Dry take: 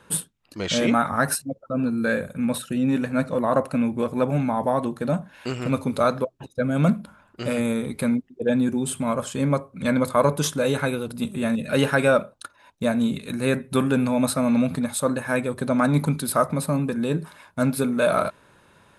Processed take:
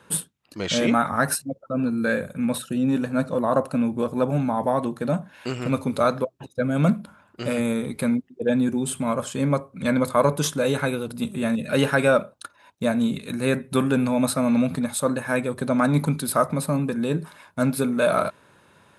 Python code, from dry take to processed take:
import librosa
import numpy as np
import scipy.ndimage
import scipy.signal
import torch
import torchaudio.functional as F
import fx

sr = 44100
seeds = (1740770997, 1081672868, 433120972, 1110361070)

y = fx.peak_eq(x, sr, hz=2100.0, db=-7.0, octaves=0.48, at=(2.63, 4.58))
y = scipy.signal.sosfilt(scipy.signal.butter(2, 73.0, 'highpass', fs=sr, output='sos'), y)